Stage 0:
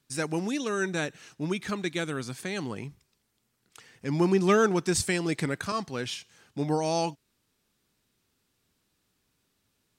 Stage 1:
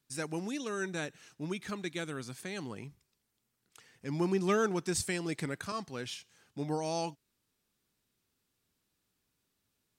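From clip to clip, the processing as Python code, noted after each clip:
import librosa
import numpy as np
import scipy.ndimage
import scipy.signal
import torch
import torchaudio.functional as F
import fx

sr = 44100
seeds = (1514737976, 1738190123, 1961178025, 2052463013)

y = fx.high_shelf(x, sr, hz=9800.0, db=4.5)
y = y * librosa.db_to_amplitude(-7.0)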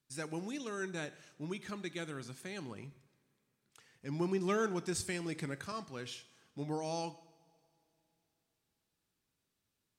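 y = fx.high_shelf(x, sr, hz=12000.0, db=-4.5)
y = fx.rev_double_slope(y, sr, seeds[0], early_s=0.77, late_s=3.4, knee_db=-19, drr_db=13.5)
y = y * librosa.db_to_amplitude(-4.0)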